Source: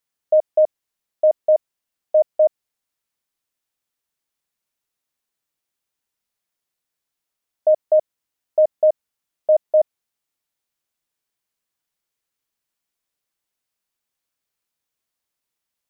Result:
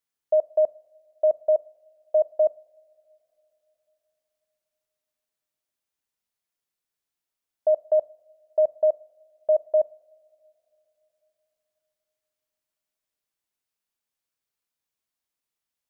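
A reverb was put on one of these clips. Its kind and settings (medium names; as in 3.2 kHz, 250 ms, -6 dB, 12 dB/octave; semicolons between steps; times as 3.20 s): two-slope reverb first 0.54 s, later 3.9 s, from -22 dB, DRR 18 dB; trim -5 dB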